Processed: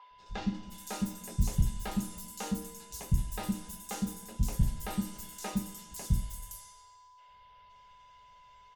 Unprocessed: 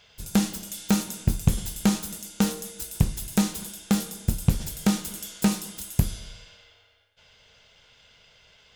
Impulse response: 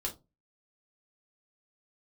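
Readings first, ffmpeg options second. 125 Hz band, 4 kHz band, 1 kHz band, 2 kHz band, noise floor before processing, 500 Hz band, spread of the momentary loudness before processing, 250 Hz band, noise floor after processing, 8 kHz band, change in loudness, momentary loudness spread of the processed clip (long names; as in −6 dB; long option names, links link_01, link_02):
−7.0 dB, −11.5 dB, −5.5 dB, −9.5 dB, −58 dBFS, −10.0 dB, 9 LU, −10.5 dB, −58 dBFS, −10.0 dB, −9.0 dB, 11 LU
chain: -filter_complex "[0:a]aeval=exprs='val(0)+0.0126*sin(2*PI*1000*n/s)':channel_layout=same,acrossover=split=320|4600[link_01][link_02][link_03];[link_01]adelay=110[link_04];[link_03]adelay=520[link_05];[link_04][link_02][link_05]amix=inputs=3:normalize=0[link_06];[1:a]atrim=start_sample=2205,asetrate=70560,aresample=44100[link_07];[link_06][link_07]afir=irnorm=-1:irlink=0,volume=-6.5dB"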